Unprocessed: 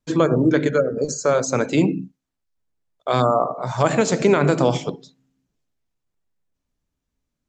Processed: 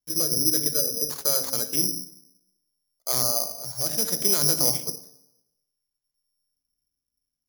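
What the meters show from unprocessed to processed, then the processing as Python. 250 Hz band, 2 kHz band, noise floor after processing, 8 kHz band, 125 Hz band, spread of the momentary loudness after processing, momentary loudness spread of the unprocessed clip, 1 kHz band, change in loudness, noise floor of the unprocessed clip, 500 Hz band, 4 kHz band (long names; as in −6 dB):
−14.5 dB, −15.5 dB, −85 dBFS, +9.0 dB, −14.0 dB, 12 LU, 8 LU, −16.0 dB, −2.5 dB, −81 dBFS, −15.0 dB, +7.5 dB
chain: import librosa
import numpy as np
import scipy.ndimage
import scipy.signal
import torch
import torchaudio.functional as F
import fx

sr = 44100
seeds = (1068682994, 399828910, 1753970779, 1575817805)

p1 = fx.wiener(x, sr, points=9)
p2 = fx.rotary(p1, sr, hz=0.6)
p3 = 10.0 ** (-15.5 / 20.0) * np.tanh(p2 / 10.0 ** (-15.5 / 20.0))
p4 = p2 + (p3 * librosa.db_to_amplitude(-10.0))
p5 = fx.rev_plate(p4, sr, seeds[0], rt60_s=0.91, hf_ratio=0.35, predelay_ms=0, drr_db=13.0)
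p6 = (np.kron(p5[::8], np.eye(8)[0]) * 8)[:len(p5)]
y = p6 * librosa.db_to_amplitude(-15.0)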